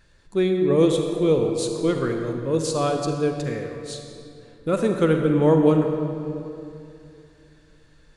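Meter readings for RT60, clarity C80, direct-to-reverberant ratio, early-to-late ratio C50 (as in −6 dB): 2.7 s, 5.0 dB, 3.5 dB, 4.0 dB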